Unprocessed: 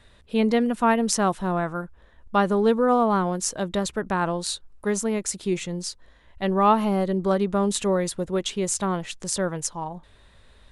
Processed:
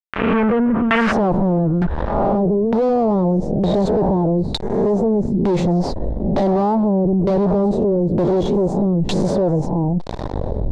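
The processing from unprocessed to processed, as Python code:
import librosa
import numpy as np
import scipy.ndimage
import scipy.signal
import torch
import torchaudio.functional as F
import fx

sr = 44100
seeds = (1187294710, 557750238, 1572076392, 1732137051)

y = fx.spec_swells(x, sr, rise_s=0.43)
y = fx.recorder_agc(y, sr, target_db=-9.0, rise_db_per_s=12.0, max_gain_db=30)
y = fx.fuzz(y, sr, gain_db=31.0, gate_db=-40.0)
y = fx.band_shelf(y, sr, hz=1900.0, db=fx.steps((0.0, 11.0), (1.11, -8.0), (2.36, -16.0)), octaves=1.7)
y = fx.filter_lfo_lowpass(y, sr, shape='saw_down', hz=1.1, low_hz=230.0, high_hz=2400.0, q=0.85)
y = fx.env_flatten(y, sr, amount_pct=70)
y = y * 10.0 ** (-4.0 / 20.0)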